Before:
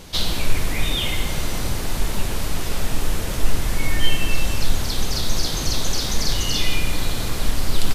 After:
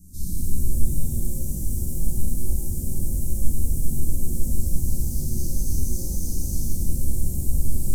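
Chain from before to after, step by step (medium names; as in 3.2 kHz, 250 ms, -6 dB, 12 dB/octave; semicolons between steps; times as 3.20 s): inverse Chebyshev band-stop 650–3000 Hz, stop band 60 dB; pitch-shifted reverb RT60 1.7 s, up +7 st, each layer -8 dB, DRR -8.5 dB; trim -8.5 dB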